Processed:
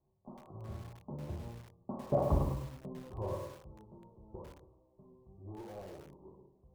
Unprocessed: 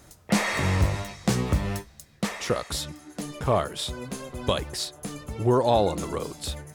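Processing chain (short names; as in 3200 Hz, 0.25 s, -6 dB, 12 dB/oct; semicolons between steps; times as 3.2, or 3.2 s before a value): one-sided fold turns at -15 dBFS; Doppler pass-by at 2.31, 52 m/s, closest 3.1 m; steep low-pass 1100 Hz 72 dB/oct; low shelf 310 Hz +4 dB; notches 60/120/180/240/300/360/420/480/540 Hz; reverb RT60 0.75 s, pre-delay 3 ms, DRR 2 dB; lo-fi delay 0.102 s, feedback 35%, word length 9-bit, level -6 dB; gain +4.5 dB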